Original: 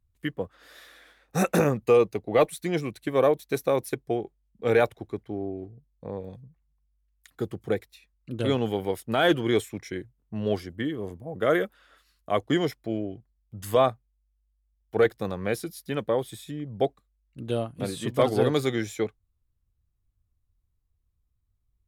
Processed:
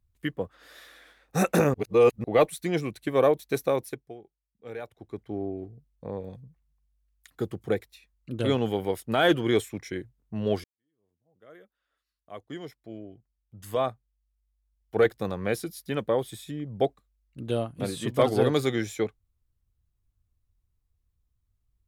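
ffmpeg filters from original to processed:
-filter_complex "[0:a]asplit=6[s0][s1][s2][s3][s4][s5];[s0]atrim=end=1.742[s6];[s1]atrim=start=1.738:end=2.242,asetpts=PTS-STARTPTS,areverse[s7];[s2]atrim=start=2.238:end=4.14,asetpts=PTS-STARTPTS,afade=t=out:st=1.402:d=0.5:silence=0.141254[s8];[s3]atrim=start=4.14:end=4.87,asetpts=PTS-STARTPTS,volume=0.141[s9];[s4]atrim=start=4.87:end=10.64,asetpts=PTS-STARTPTS,afade=t=in:d=0.5:silence=0.141254,afade=t=out:st=5.766:d=0.004:c=hsin[s10];[s5]atrim=start=10.64,asetpts=PTS-STARTPTS,afade=t=in:d=4.47:c=qua[s11];[s6][s7]acrossfade=d=0.004:c1=hsin:c2=hsin[s12];[s8][s9][s10][s11]concat=n=4:v=0:a=1[s13];[s12][s13]acrossfade=d=0.004:c1=hsin:c2=hsin"

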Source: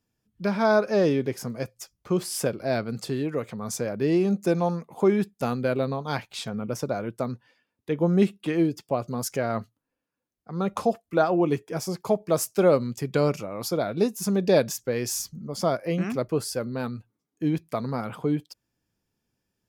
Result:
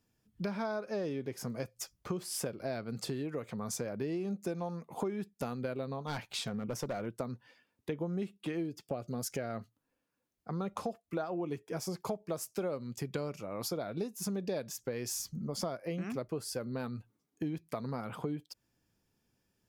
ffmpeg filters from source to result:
-filter_complex "[0:a]asettb=1/sr,asplit=3[s0][s1][s2];[s0]atrim=end=6.044[s3];[s1]atrim=start=6.04:end=7.06,asetpts=PTS-STARTPTS,afade=t=in:d=0.004:c=qsin,afade=t=out:st=1.016:d=0.004:c=qsin,volume=16.8,asoftclip=hard,volume=0.0596[s4];[s2]atrim=start=7.056[s5];[s3][s4]acrossfade=d=0.004:c1=hsin:c2=qsin[s6];[s6][s5]acrossfade=d=0.004:c1=qsin:c2=hsin,asettb=1/sr,asplit=3[s7][s8][s9];[s7]atrim=end=8.824[s10];[s8]atrim=start=8.82:end=9.59,asetpts=PTS-STARTPTS,afade=t=in:d=0.004:c=qsin,afade=t=out:st=0.766:d=0.004:c=qsin,equalizer=f=1000:t=o:w=0.35:g=-10.5[s11];[s9]atrim=start=9.586[s12];[s10][s11]acrossfade=d=0.004:c1=hsin:c2=qsin[s13];[s13][s12]acrossfade=d=0.004:c1=qsin:c2=hsin,acompressor=threshold=0.0158:ratio=6,volume=1.19"

